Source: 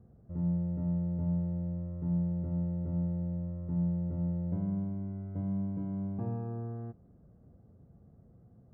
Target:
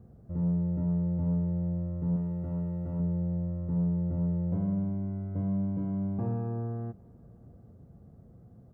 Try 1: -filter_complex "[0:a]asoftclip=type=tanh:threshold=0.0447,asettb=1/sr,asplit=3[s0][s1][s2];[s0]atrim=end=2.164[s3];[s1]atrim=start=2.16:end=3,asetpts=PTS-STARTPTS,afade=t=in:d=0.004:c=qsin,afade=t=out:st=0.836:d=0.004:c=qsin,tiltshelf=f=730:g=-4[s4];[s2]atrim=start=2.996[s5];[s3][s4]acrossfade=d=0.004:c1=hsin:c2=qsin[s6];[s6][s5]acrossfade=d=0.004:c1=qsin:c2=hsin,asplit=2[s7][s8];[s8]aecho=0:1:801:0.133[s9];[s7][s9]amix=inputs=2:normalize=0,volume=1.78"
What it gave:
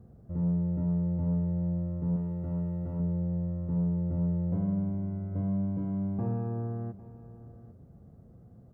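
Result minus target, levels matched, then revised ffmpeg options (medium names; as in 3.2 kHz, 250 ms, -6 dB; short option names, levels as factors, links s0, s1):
echo-to-direct +11.5 dB
-filter_complex "[0:a]asoftclip=type=tanh:threshold=0.0447,asettb=1/sr,asplit=3[s0][s1][s2];[s0]atrim=end=2.164[s3];[s1]atrim=start=2.16:end=3,asetpts=PTS-STARTPTS,afade=t=in:d=0.004:c=qsin,afade=t=out:st=0.836:d=0.004:c=qsin,tiltshelf=f=730:g=-4[s4];[s2]atrim=start=2.996[s5];[s3][s4]acrossfade=d=0.004:c1=hsin:c2=qsin[s6];[s6][s5]acrossfade=d=0.004:c1=qsin:c2=hsin,asplit=2[s7][s8];[s8]aecho=0:1:801:0.0355[s9];[s7][s9]amix=inputs=2:normalize=0,volume=1.78"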